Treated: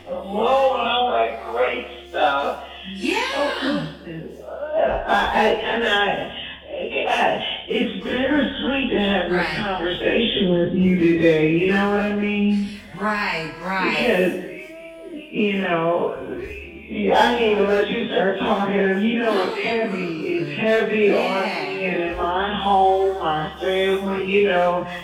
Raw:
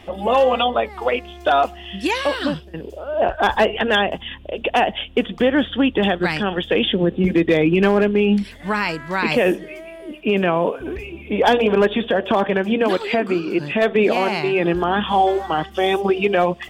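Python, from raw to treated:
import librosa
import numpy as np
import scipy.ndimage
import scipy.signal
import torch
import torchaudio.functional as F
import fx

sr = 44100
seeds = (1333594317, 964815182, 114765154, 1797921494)

y = fx.spec_dilate(x, sr, span_ms=60)
y = fx.stretch_vocoder_free(y, sr, factor=1.5)
y = fx.rev_gated(y, sr, seeds[0], gate_ms=390, shape='falling', drr_db=9.5)
y = y * 10.0 ** (-2.5 / 20.0)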